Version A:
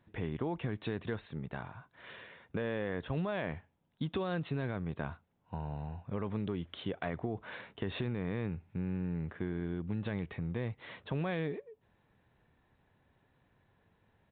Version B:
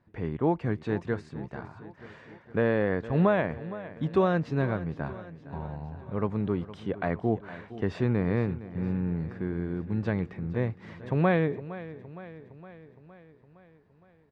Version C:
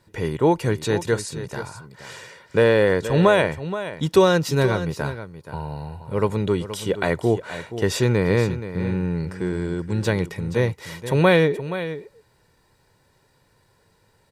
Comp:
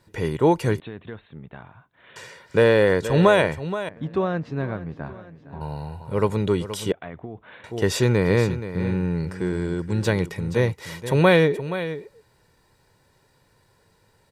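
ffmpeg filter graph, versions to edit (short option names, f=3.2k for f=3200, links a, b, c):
-filter_complex "[0:a]asplit=2[a][b];[2:a]asplit=4[c][d][e][f];[c]atrim=end=0.802[g];[a]atrim=start=0.798:end=2.162[h];[d]atrim=start=2.158:end=3.892[i];[1:a]atrim=start=3.888:end=5.612[j];[e]atrim=start=5.608:end=6.922[k];[b]atrim=start=6.918:end=7.642[l];[f]atrim=start=7.638[m];[g][h]acrossfade=d=0.004:c1=hsin:c2=hsin[n];[n][i]acrossfade=d=0.004:c1=hsin:c2=hsin[o];[o][j]acrossfade=d=0.004:c1=hsin:c2=hsin[p];[p][k]acrossfade=d=0.004:c1=hsin:c2=hsin[q];[q][l]acrossfade=d=0.004:c1=hsin:c2=hsin[r];[r][m]acrossfade=d=0.004:c1=hsin:c2=hsin"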